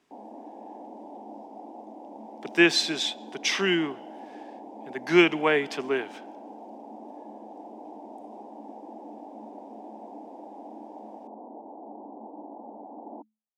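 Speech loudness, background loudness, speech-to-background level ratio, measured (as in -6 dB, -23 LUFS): -24.5 LUFS, -44.0 LUFS, 19.5 dB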